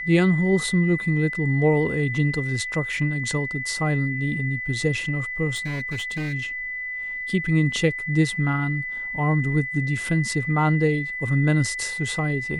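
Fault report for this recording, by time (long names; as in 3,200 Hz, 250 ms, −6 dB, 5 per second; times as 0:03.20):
whistle 2,000 Hz −28 dBFS
0:05.55–0:06.34: clipping −24.5 dBFS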